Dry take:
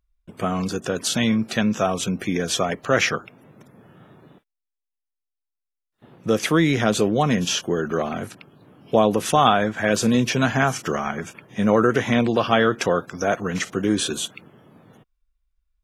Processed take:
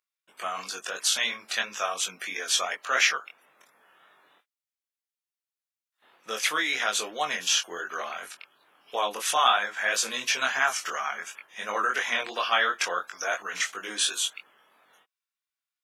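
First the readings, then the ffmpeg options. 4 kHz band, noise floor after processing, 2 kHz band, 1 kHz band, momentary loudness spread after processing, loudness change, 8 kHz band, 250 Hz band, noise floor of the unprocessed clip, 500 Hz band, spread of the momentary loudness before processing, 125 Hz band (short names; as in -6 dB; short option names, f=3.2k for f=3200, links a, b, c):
+0.5 dB, under -85 dBFS, -0.5 dB, -4.5 dB, 12 LU, -5.5 dB, +0.5 dB, -26.0 dB, -83 dBFS, -14.0 dB, 8 LU, under -30 dB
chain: -af "highpass=1.2k,flanger=delay=20:depth=3.4:speed=2.9,volume=3.5dB"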